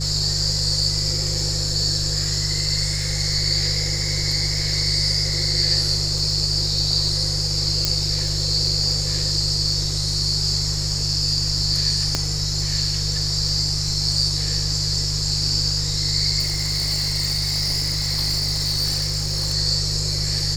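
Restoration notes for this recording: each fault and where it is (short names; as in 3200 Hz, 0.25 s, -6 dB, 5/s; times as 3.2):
crackle 27/s -29 dBFS
hum 50 Hz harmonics 3 -26 dBFS
7.85 pop -4 dBFS
12.15 pop -6 dBFS
16.39–19.54 clipped -18 dBFS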